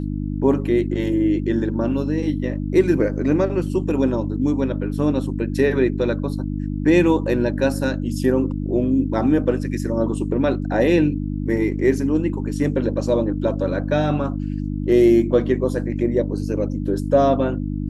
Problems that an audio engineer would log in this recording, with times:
hum 50 Hz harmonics 6 -25 dBFS

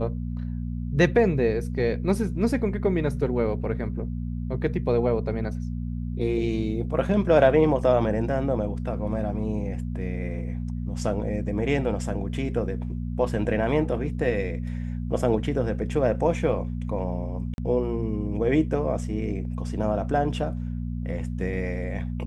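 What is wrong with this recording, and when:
hum 60 Hz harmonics 4 -30 dBFS
17.54–17.58 gap 41 ms

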